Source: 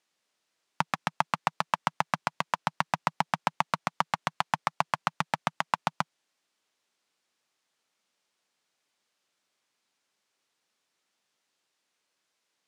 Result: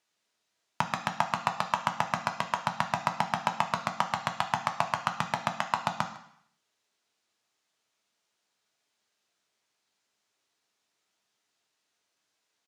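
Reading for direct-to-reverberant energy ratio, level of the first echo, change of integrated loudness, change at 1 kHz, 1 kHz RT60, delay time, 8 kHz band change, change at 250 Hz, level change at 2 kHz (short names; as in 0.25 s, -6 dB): 4.5 dB, -20.5 dB, 0.0 dB, 0.0 dB, 0.70 s, 0.154 s, +0.5 dB, +0.5 dB, -0.5 dB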